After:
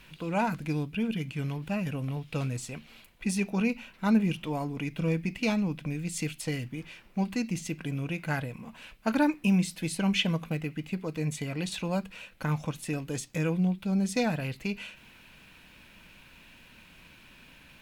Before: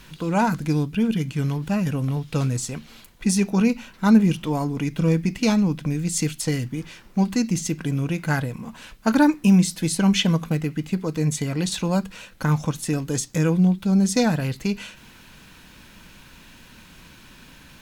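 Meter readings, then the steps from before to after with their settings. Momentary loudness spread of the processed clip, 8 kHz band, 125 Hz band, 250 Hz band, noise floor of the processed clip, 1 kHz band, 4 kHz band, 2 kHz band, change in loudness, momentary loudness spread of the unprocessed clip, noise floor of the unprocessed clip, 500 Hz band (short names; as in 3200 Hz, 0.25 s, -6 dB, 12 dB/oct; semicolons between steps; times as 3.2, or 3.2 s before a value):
9 LU, -11.5 dB, -9.0 dB, -9.0 dB, -55 dBFS, -7.0 dB, -6.5 dB, -4.5 dB, -8.5 dB, 10 LU, -48 dBFS, -7.0 dB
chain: fifteen-band EQ 630 Hz +4 dB, 2500 Hz +8 dB, 6300 Hz -4 dB; gain -9 dB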